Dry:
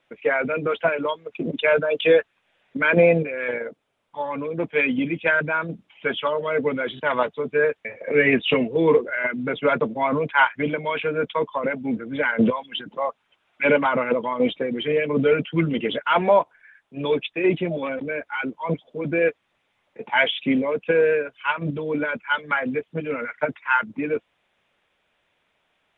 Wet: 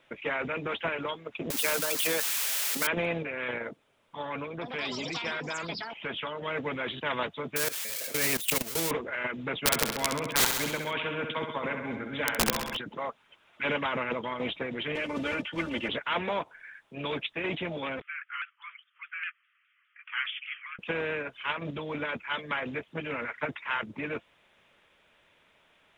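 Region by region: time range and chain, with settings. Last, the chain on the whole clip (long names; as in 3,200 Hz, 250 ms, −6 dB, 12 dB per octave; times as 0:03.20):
0:01.50–0:02.87: spike at every zero crossing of −21 dBFS + high-pass filter 190 Hz 24 dB per octave
0:04.44–0:06.42: downward compressor 2 to 1, threshold −31 dBFS + delay with pitch and tempo change per echo 173 ms, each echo +7 semitones, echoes 2, each echo −6 dB
0:07.56–0:08.91: spike at every zero crossing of −15.5 dBFS + output level in coarse steps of 20 dB
0:09.63–0:12.77: wrap-around overflow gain 11 dB + repeating echo 66 ms, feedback 58%, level −10.5 dB
0:14.95–0:15.89: one scale factor per block 7 bits + high-frequency loss of the air 98 metres + comb filter 3.4 ms, depth 89%
0:18.01–0:20.79: Chebyshev band-pass filter 1,200–3,200 Hz, order 5 + high-frequency loss of the air 200 metres + pitch modulation by a square or saw wave saw down 4.9 Hz, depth 100 cents
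whole clip: notch filter 750 Hz, Q 12; every bin compressed towards the loudest bin 2 to 1; level +3.5 dB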